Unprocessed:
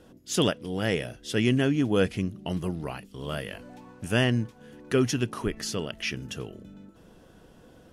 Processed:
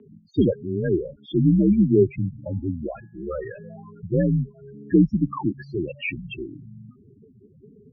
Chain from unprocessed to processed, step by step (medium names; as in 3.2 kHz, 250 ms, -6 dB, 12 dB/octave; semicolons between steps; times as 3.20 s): loudest bins only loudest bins 8; mistuned SSB -81 Hz 210–3100 Hz; 2.07–3.74 s: de-hum 419.5 Hz, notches 4; trim +8.5 dB